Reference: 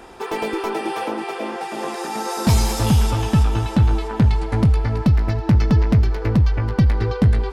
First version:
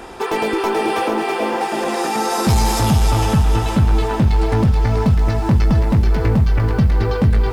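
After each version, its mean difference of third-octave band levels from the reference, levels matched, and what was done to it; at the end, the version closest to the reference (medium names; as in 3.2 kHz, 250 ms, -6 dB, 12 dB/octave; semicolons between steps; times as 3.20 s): 4.0 dB: in parallel at +1.5 dB: peak limiter -17 dBFS, peak gain reduction 10 dB; on the sum: saturation -8.5 dBFS, distortion -17 dB; repeats whose band climbs or falls 448 ms, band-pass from 650 Hz, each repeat 0.7 oct, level -7 dB; bit-crushed delay 454 ms, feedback 35%, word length 7-bit, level -9 dB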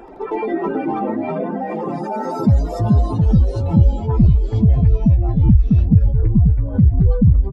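12.0 dB: spectral contrast enhancement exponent 2; reverb removal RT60 1 s; ever faster or slower copies 81 ms, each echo -4 st, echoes 3; resampled via 32 kHz; trim +2.5 dB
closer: first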